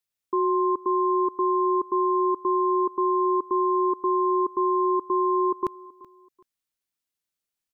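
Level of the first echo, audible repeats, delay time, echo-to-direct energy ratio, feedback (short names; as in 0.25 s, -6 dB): -21.0 dB, 2, 0.379 s, -20.5 dB, 30%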